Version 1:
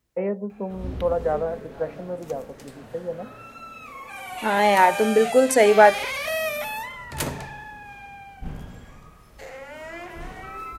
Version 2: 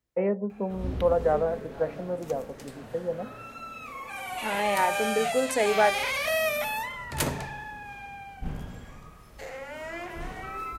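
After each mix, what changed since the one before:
second voice −9.0 dB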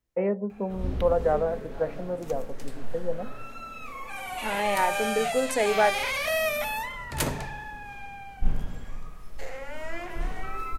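master: remove high-pass filter 53 Hz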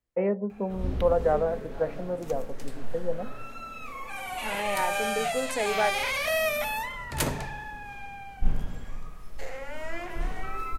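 second voice −4.5 dB

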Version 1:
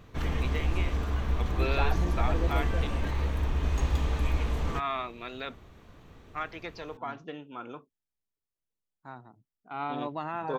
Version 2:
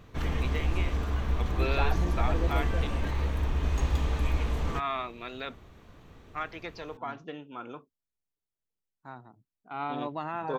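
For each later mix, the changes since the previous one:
nothing changed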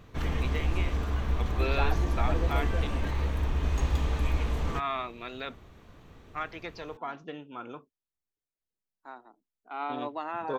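second voice: add high-pass filter 290 Hz 24 dB per octave

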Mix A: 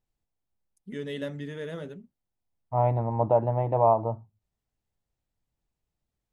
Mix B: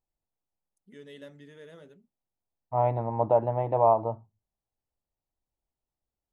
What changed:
first voice −11.5 dB
master: add bass and treble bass −5 dB, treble +3 dB

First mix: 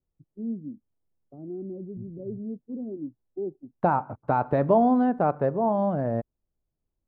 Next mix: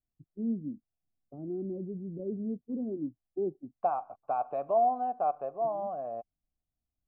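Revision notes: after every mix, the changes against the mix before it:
second voice: add formant filter a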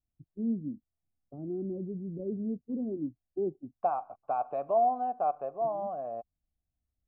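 first voice: add parametric band 65 Hz +6.5 dB 1.7 octaves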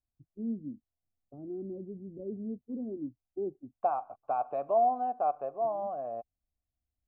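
first voice −3.0 dB
master: add parametric band 170 Hz −9.5 dB 0.22 octaves

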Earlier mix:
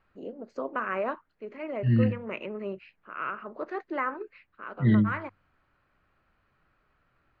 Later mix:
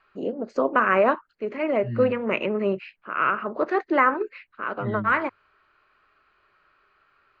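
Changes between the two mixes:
first voice +11.0 dB
second voice −8.5 dB

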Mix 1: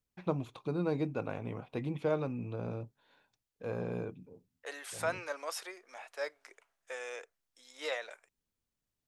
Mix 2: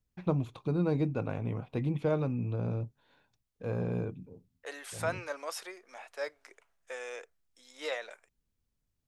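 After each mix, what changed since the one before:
master: add low-shelf EQ 180 Hz +11.5 dB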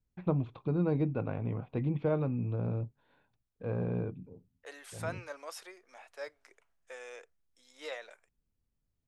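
first voice: add high-frequency loss of the air 300 metres
second voice −5.5 dB

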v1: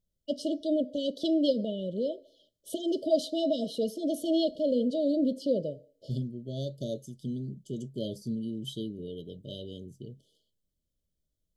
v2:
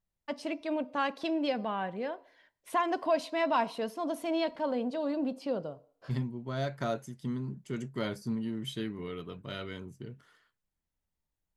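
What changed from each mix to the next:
first voice −5.5 dB
master: remove linear-phase brick-wall band-stop 660–2,900 Hz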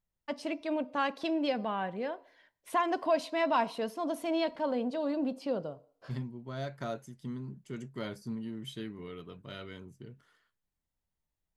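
second voice −4.5 dB

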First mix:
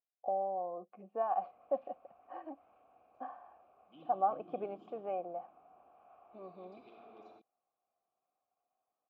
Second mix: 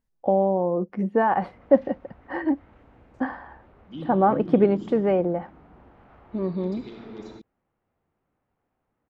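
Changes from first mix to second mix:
first voice +5.0 dB
master: remove formant filter a

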